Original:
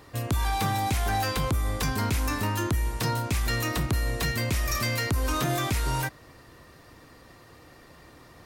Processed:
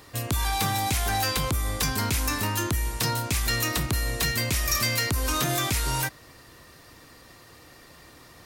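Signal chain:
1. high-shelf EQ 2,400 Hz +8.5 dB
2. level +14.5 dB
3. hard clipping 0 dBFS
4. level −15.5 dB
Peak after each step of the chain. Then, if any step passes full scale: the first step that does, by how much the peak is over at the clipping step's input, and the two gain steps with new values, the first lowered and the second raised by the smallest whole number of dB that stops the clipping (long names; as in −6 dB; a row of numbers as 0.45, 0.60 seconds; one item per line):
−11.0, +3.5, 0.0, −15.5 dBFS
step 2, 3.5 dB
step 2 +10.5 dB, step 4 −11.5 dB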